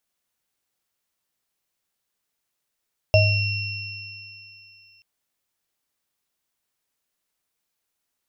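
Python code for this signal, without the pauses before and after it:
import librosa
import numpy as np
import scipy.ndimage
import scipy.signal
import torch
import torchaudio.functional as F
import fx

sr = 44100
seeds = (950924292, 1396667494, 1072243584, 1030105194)

y = fx.additive_free(sr, length_s=1.88, hz=103.0, level_db=-14.0, upper_db=(2.0, -6.0, -11.0), decay_s=1.88, upper_decays_s=(0.39, 3.19, 3.53), upper_hz=(627.0, 2730.0, 5330.0))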